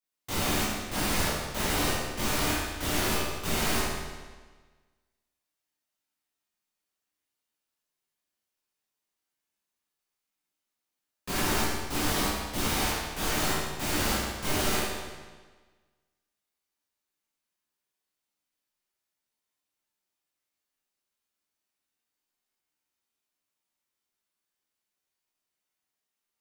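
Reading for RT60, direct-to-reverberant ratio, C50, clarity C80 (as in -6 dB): 1.4 s, -10.0 dB, -2.0 dB, 1.0 dB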